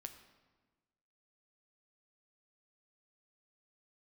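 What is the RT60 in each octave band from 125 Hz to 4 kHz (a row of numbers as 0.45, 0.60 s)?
1.6, 1.5, 1.4, 1.3, 1.1, 0.95 s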